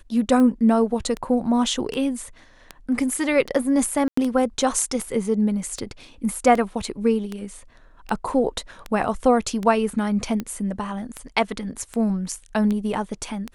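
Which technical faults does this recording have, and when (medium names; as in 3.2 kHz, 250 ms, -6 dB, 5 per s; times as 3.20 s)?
tick 78 rpm -15 dBFS
4.08–4.17 s: dropout 94 ms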